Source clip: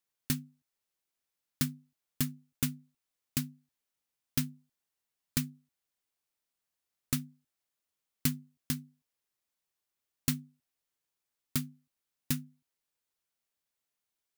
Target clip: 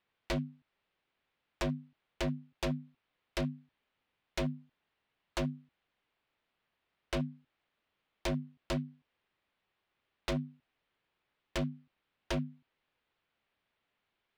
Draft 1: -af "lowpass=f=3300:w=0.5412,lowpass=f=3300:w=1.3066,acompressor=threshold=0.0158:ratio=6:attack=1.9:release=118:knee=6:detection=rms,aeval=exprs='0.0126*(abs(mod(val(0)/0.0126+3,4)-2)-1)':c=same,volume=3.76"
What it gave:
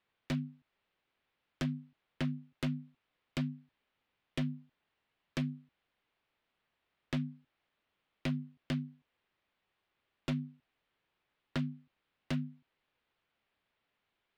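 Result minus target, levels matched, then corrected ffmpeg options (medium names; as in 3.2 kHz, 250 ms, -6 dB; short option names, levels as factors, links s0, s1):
compression: peak gain reduction +6 dB
-af "lowpass=f=3300:w=0.5412,lowpass=f=3300:w=1.3066,acompressor=threshold=0.0355:ratio=6:attack=1.9:release=118:knee=6:detection=rms,aeval=exprs='0.0126*(abs(mod(val(0)/0.0126+3,4)-2)-1)':c=same,volume=3.76"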